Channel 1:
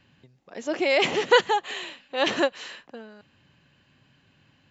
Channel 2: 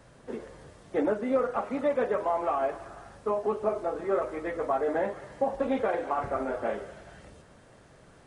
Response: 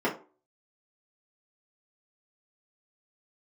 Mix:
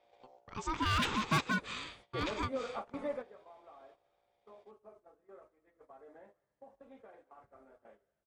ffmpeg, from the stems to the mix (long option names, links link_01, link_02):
-filter_complex "[0:a]aeval=exprs='val(0)+0.00158*(sin(2*PI*60*n/s)+sin(2*PI*2*60*n/s)/2+sin(2*PI*3*60*n/s)/3+sin(2*PI*4*60*n/s)/4+sin(2*PI*5*60*n/s)/5)':channel_layout=same,aeval=exprs='val(0)*sin(2*PI*640*n/s)':channel_layout=same,volume=-1.5dB,afade=type=out:start_time=1.5:duration=0.49:silence=0.473151,asplit=2[link_01][link_02];[1:a]bandreject=frequency=84.56:width_type=h:width=4,bandreject=frequency=169.12:width_type=h:width=4,bandreject=frequency=253.68:width_type=h:width=4,bandreject=frequency=338.24:width_type=h:width=4,bandreject=frequency=422.8:width_type=h:width=4,bandreject=frequency=507.36:width_type=h:width=4,bandreject=frequency=591.92:width_type=h:width=4,bandreject=frequency=676.48:width_type=h:width=4,bandreject=frequency=761.04:width_type=h:width=4,bandreject=frequency=845.6:width_type=h:width=4,bandreject=frequency=930.16:width_type=h:width=4,bandreject=frequency=1014.72:width_type=h:width=4,bandreject=frequency=1099.28:width_type=h:width=4,bandreject=frequency=1183.84:width_type=h:width=4,bandreject=frequency=1268.4:width_type=h:width=4,bandreject=frequency=1352.96:width_type=h:width=4,bandreject=frequency=1437.52:width_type=h:width=4,bandreject=frequency=1522.08:width_type=h:width=4,bandreject=frequency=1606.64:width_type=h:width=4,bandreject=frequency=1691.2:width_type=h:width=4,bandreject=frequency=1775.76:width_type=h:width=4,bandreject=frequency=1860.32:width_type=h:width=4,bandreject=frequency=1944.88:width_type=h:width=4,bandreject=frequency=2029.44:width_type=h:width=4,bandreject=frequency=2114:width_type=h:width=4,bandreject=frequency=2198.56:width_type=h:width=4,bandreject=frequency=2283.12:width_type=h:width=4,bandreject=frequency=2367.68:width_type=h:width=4,bandreject=frequency=2452.24:width_type=h:width=4,bandreject=frequency=2536.8:width_type=h:width=4,bandreject=frequency=2621.36:width_type=h:width=4,bandreject=frequency=2705.92:width_type=h:width=4,bandreject=frequency=2790.48:width_type=h:width=4,bandreject=frequency=2875.04:width_type=h:width=4,bandreject=frequency=2959.6:width_type=h:width=4,adelay=1200,volume=-10dB[link_03];[link_02]apad=whole_len=417248[link_04];[link_03][link_04]sidechaingate=range=-18dB:threshold=-57dB:ratio=16:detection=peak[link_05];[link_01][link_05]amix=inputs=2:normalize=0,agate=range=-11dB:threshold=-59dB:ratio=16:detection=peak,asoftclip=type=hard:threshold=-21.5dB,alimiter=level_in=1dB:limit=-24dB:level=0:latency=1:release=251,volume=-1dB"